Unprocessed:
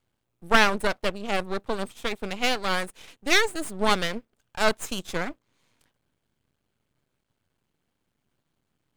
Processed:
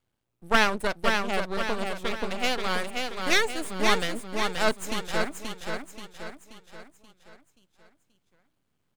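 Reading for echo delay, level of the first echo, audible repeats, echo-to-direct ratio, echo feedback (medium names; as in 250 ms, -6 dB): 530 ms, -4.5 dB, 5, -3.5 dB, 47%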